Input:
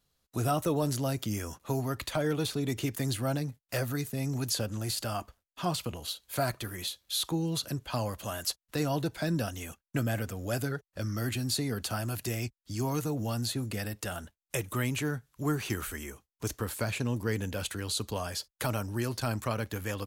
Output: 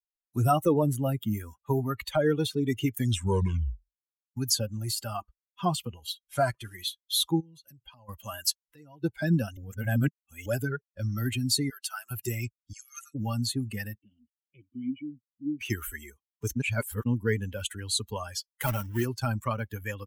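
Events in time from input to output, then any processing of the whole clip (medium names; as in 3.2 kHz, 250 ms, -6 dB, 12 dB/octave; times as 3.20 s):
0.71–1.95 s: dynamic bell 5.4 kHz, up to -8 dB, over -56 dBFS, Q 1.9
2.93 s: tape stop 1.44 s
6.24–6.75 s: CVSD coder 64 kbps
7.40–8.09 s: compression, threshold -42 dBFS
8.62–9.04 s: compression 2:1, threshold -50 dBFS
9.57–10.46 s: reverse
11.70–12.11 s: high-pass 1 kHz
12.73–13.15 s: brick-wall FIR band-pass 1.2–12 kHz
13.98–15.61 s: cascade formant filter i
16.56–17.06 s: reverse
18.63–19.07 s: block-companded coder 3-bit
whole clip: expander on every frequency bin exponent 2; trim +8.5 dB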